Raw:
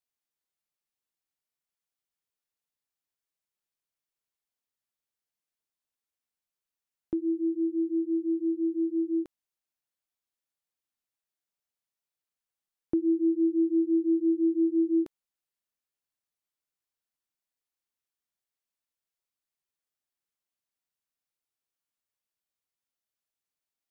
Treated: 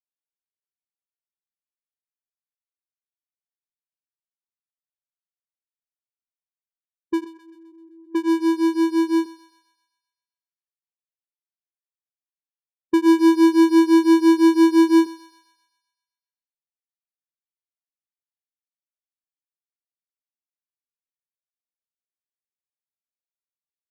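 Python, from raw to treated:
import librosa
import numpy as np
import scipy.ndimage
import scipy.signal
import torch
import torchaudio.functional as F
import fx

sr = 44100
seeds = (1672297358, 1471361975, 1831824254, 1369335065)

y = fx.halfwave_hold(x, sr)
y = fx.level_steps(y, sr, step_db=21, at=(7.24, 8.15))
y = fx.env_lowpass(y, sr, base_hz=320.0, full_db=-24.5)
y = fx.echo_thinned(y, sr, ms=129, feedback_pct=66, hz=500.0, wet_db=-10.5)
y = fx.spectral_expand(y, sr, expansion=1.5)
y = F.gain(torch.from_numpy(y), 6.0).numpy()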